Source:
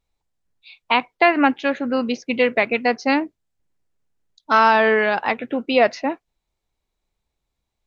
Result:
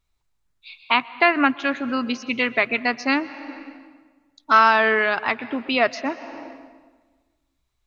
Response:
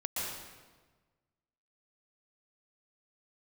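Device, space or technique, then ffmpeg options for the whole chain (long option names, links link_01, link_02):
ducked reverb: -filter_complex "[0:a]equalizer=frequency=200:width_type=o:width=0.33:gain=-8,equalizer=frequency=315:width_type=o:width=0.33:gain=-3,equalizer=frequency=500:width_type=o:width=0.33:gain=-11,equalizer=frequency=800:width_type=o:width=0.33:gain=-7,equalizer=frequency=1250:width_type=o:width=0.33:gain=4,asplit=3[link_01][link_02][link_03];[1:a]atrim=start_sample=2205[link_04];[link_02][link_04]afir=irnorm=-1:irlink=0[link_05];[link_03]apad=whole_len=346651[link_06];[link_05][link_06]sidechaincompress=threshold=-33dB:ratio=8:attack=8.5:release=390,volume=-6.5dB[link_07];[link_01][link_07]amix=inputs=2:normalize=0"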